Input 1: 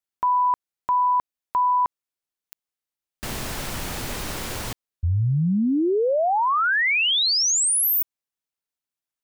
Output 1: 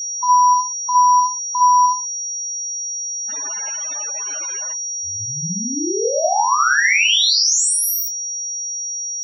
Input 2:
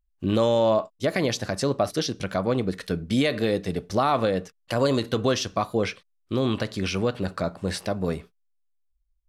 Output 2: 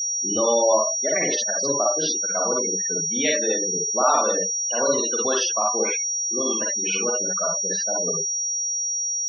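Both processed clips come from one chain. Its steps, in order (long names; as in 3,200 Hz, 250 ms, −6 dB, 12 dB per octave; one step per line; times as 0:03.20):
four-comb reverb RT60 0.33 s, DRR −2 dB
steady tone 5,700 Hz −23 dBFS
meter weighting curve A
gate on every frequency bin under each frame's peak −20 dB strong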